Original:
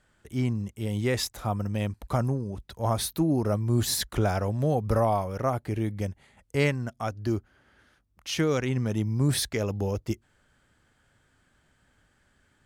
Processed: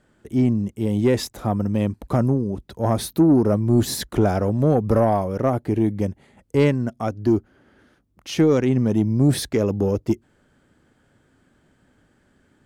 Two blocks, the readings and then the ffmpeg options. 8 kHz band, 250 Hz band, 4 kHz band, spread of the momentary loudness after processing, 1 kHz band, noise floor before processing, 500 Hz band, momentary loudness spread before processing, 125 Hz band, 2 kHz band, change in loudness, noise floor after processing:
0.0 dB, +10.0 dB, +0.5 dB, 7 LU, +4.0 dB, -68 dBFS, +8.0 dB, 8 LU, +5.0 dB, +0.5 dB, +7.0 dB, -63 dBFS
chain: -af "equalizer=f=290:w=0.52:g=12,acontrast=55,volume=-6dB"

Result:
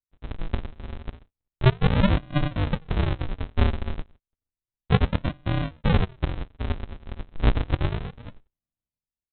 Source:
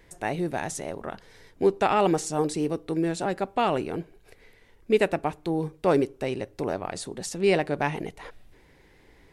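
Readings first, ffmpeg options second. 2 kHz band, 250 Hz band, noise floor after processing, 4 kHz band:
-1.0 dB, -0.5 dB, under -85 dBFS, +2.0 dB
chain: -af "agate=range=-43dB:threshold=-45dB:ratio=16:detection=peak,dynaudnorm=f=120:g=7:m=8dB,aresample=8000,acrusher=samples=35:mix=1:aa=0.000001:lfo=1:lforange=35:lforate=0.32,aresample=44100,volume=-4.5dB"

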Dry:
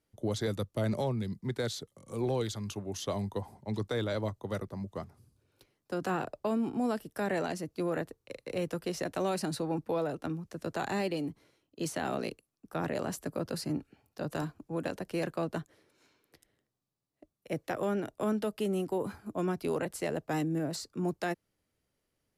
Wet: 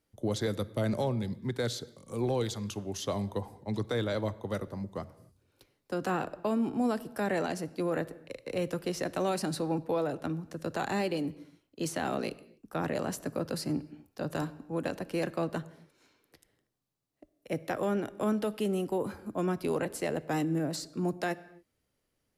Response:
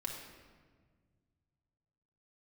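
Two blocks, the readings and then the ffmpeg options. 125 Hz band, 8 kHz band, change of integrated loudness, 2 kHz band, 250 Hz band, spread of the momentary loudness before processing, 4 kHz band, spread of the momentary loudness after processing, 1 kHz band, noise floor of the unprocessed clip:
+1.0 dB, +1.5 dB, +1.5 dB, +1.5 dB, +1.5 dB, 8 LU, +1.5 dB, 8 LU, +1.5 dB, -82 dBFS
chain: -filter_complex "[0:a]asplit=2[a][b];[1:a]atrim=start_sample=2205,afade=t=out:st=0.34:d=0.01,atrim=end_sample=15435[c];[b][c]afir=irnorm=-1:irlink=0,volume=-12.5dB[d];[a][d]amix=inputs=2:normalize=0"

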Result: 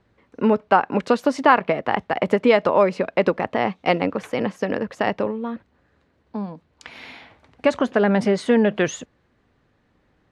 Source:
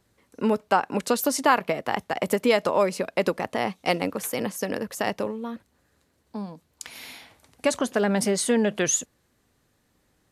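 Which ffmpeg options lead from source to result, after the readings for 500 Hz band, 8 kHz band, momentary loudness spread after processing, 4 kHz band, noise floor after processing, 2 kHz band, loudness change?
+5.0 dB, under -10 dB, 15 LU, -1.0 dB, -65 dBFS, +4.0 dB, +4.0 dB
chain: -af "lowpass=2.7k,volume=5dB"

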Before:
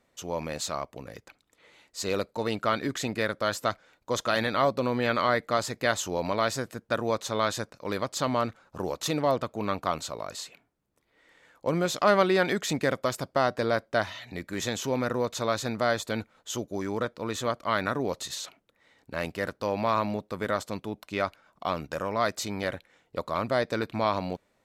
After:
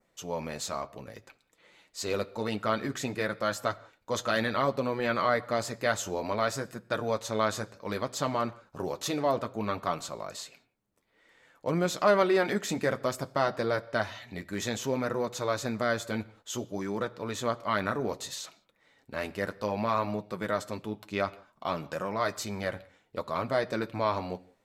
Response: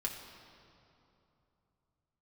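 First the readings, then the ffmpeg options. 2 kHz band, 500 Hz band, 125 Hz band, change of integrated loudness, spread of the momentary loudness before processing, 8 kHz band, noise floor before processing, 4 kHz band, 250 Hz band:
-2.0 dB, -2.0 dB, -2.0 dB, -2.0 dB, 10 LU, -2.5 dB, -72 dBFS, -3.5 dB, -2.0 dB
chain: -filter_complex "[0:a]adynamicequalizer=threshold=0.00398:dfrequency=3500:dqfactor=1.7:tfrequency=3500:tqfactor=1.7:attack=5:release=100:ratio=0.375:range=2:mode=cutabove:tftype=bell,flanger=delay=5.4:depth=4.9:regen=-38:speed=0.59:shape=triangular,asplit=2[a][b];[1:a]atrim=start_sample=2205,afade=t=out:st=0.24:d=0.01,atrim=end_sample=11025[c];[b][c]afir=irnorm=-1:irlink=0,volume=-11.5dB[d];[a][d]amix=inputs=2:normalize=0"

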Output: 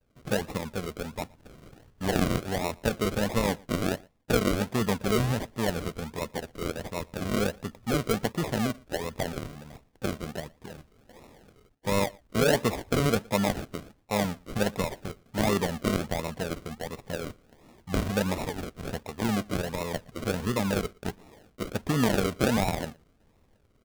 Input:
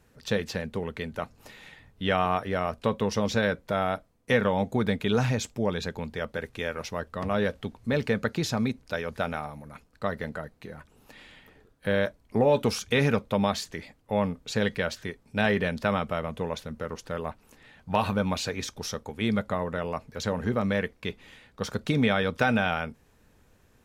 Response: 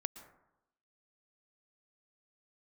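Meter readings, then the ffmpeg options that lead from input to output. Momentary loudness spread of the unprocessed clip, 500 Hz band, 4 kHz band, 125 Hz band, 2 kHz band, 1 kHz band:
12 LU, -2.0 dB, -0.5 dB, 0.0 dB, -3.5 dB, -2.5 dB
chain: -filter_complex "[0:a]acrusher=samples=40:mix=1:aa=0.000001:lfo=1:lforange=24:lforate=1.4,asplit=2[a][b];[b]adelay=116.6,volume=-26dB,highshelf=f=4k:g=-2.62[c];[a][c]amix=inputs=2:normalize=0,agate=range=-33dB:threshold=-57dB:ratio=3:detection=peak,volume=-1dB"

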